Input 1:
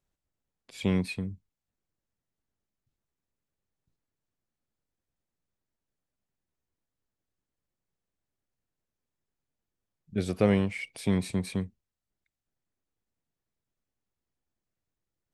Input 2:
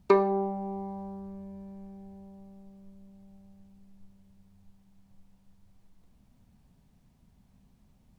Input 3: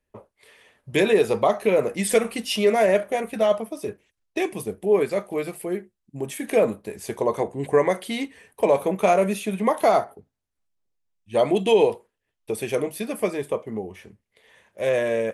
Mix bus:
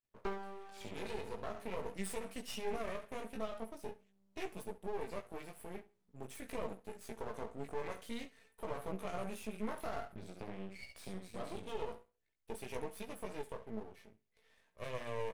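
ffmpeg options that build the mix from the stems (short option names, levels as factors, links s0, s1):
-filter_complex "[0:a]acompressor=threshold=0.0141:ratio=3,volume=0.596,asplit=3[s0][s1][s2];[s1]volume=0.562[s3];[1:a]highpass=150,adelay=150,volume=0.299[s4];[2:a]aecho=1:1:4.5:0.42,volume=0.316,asplit=2[s5][s6];[s6]volume=0.112[s7];[s2]apad=whole_len=676542[s8];[s5][s8]sidechaincompress=threshold=0.00501:ratio=4:attack=7.6:release=667[s9];[s0][s9]amix=inputs=2:normalize=0,alimiter=level_in=1.33:limit=0.0631:level=0:latency=1:release=83,volume=0.75,volume=1[s10];[s3][s7]amix=inputs=2:normalize=0,aecho=0:1:68|136|204|272:1|0.22|0.0484|0.0106[s11];[s4][s10][s11]amix=inputs=3:normalize=0,flanger=delay=15.5:depth=3.2:speed=0.46,aeval=exprs='max(val(0),0)':c=same"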